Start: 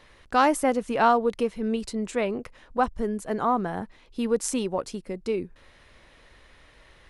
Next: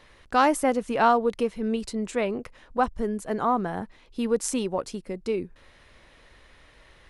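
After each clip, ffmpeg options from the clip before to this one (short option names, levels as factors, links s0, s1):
-af anull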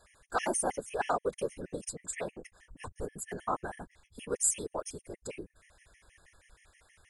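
-af "afftfilt=real='hypot(re,im)*cos(2*PI*random(0))':imag='hypot(re,im)*sin(2*PI*random(1))':win_size=512:overlap=0.75,equalizer=f=125:t=o:w=1:g=-11,equalizer=f=250:t=o:w=1:g=-10,equalizer=f=500:t=o:w=1:g=-4,equalizer=f=1000:t=o:w=1:g=-5,equalizer=f=4000:t=o:w=1:g=-11,equalizer=f=8000:t=o:w=1:g=12,afftfilt=real='re*gt(sin(2*PI*6.3*pts/sr)*(1-2*mod(floor(b*sr/1024/1700),2)),0)':imag='im*gt(sin(2*PI*6.3*pts/sr)*(1-2*mod(floor(b*sr/1024/1700),2)),0)':win_size=1024:overlap=0.75,volume=1.78"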